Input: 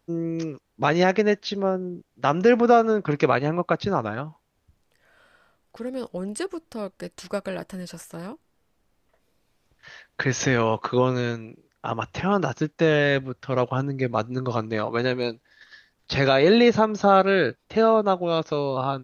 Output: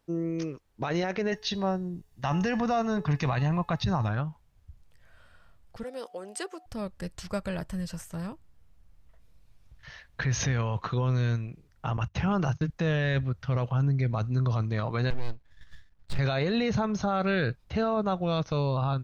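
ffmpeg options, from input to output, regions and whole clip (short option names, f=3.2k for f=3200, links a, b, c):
-filter_complex "[0:a]asettb=1/sr,asplit=3[a][b][c];[a]atrim=end=1.324[d];[b]atrim=start=1.32:end=4.09,asetpts=PTS-STARTPTS,afade=t=in:d=0.004:c=qsin,afade=t=out:st=2.766:d=0.004:c=qsin,highshelf=f=5.4k:g=8.5,aecho=1:1:1.1:0.47,atrim=end_sample=122157,bandreject=f=428.6:t=h:w=4,bandreject=f=857.2:t=h:w=4,bandreject=f=1.2858k:t=h:w=4,bandreject=f=1.7144k:t=h:w=4,bandreject=f=2.143k:t=h:w=4,bandreject=f=2.5716k:t=h:w=4,bandreject=f=3.0002k:t=h:w=4,bandreject=f=3.4288k:t=h:w=4,bandreject=f=3.8574k:t=h:w=4,bandreject=f=4.286k:t=h:w=4,bandreject=f=4.7146k:t=h:w=4,bandreject=f=5.1432k:t=h:w=4,bandreject=f=5.5718k:t=h:w=4[e];[c]atrim=start=4.086[f];[d][e]acrossfade=d=0.004:c1=hsin:c2=qsin[g];[g][f]acrossfade=d=0.004:c1=qsin:c2=hsin,asettb=1/sr,asplit=3[h][i][j];[h]atrim=end=5.834[k];[i]atrim=start=5.83:end=6.66,asetpts=PTS-STARTPTS,afade=t=in:d=0.004:c=qsin,afade=t=out:st=0.826:d=0.004:c=qsin,highpass=f=340:w=0.5412,highpass=f=340:w=1.3066,aeval=exprs='val(0)+0.00316*sin(2*PI*730*n/s)':c=same[l];[j]atrim=start=6.656[m];[k][l]acrossfade=d=0.004:c1=hsin:c2=qsin[n];[n][m]acrossfade=d=0.004:c1=qsin:c2=hsin,asettb=1/sr,asplit=3[o][p][q];[o]atrim=end=11.974[r];[p]atrim=start=11.97:end=12.7,asetpts=PTS-STARTPTS,afade=t=in:d=0.004:c=qsin,afade=t=out:st=0.726:d=0.004:c=qsin,bandreject=f=50:t=h:w=6,bandreject=f=100:t=h:w=6,bandreject=f=150:t=h:w=6,agate=range=-22dB:threshold=-39dB:ratio=16:release=100:detection=peak[s];[q]atrim=start=12.696[t];[r][s]acrossfade=d=0.004:c1=hsin:c2=qsin[u];[u][t]acrossfade=d=0.004:c1=qsin:c2=hsin,asettb=1/sr,asplit=3[v][w][x];[v]atrim=end=15.104[y];[w]atrim=start=15.1:end=16.19,asetpts=PTS-STARTPTS,afade=t=in:d=0.004:c=qsin,afade=t=out:st=1.086:d=0.004:c=qsin,lowpass=f=2.2k:p=1,aeval=exprs='max(val(0),0)':c=same[z];[x]atrim=start=16.186[aa];[y][z]acrossfade=d=0.004:c1=hsin:c2=qsin[ab];[ab][aa]acrossfade=d=0.004:c1=qsin:c2=hsin,asubboost=boost=8.5:cutoff=110,alimiter=limit=-17dB:level=0:latency=1:release=20,volume=-2.5dB"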